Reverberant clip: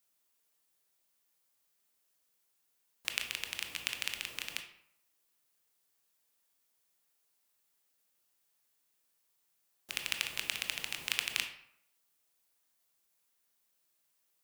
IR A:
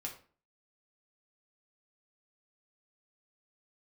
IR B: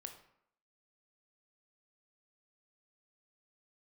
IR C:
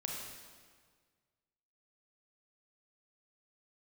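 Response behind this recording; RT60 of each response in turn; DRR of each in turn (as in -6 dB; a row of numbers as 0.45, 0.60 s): B; 0.40, 0.70, 1.7 s; -1.0, 5.0, -1.0 dB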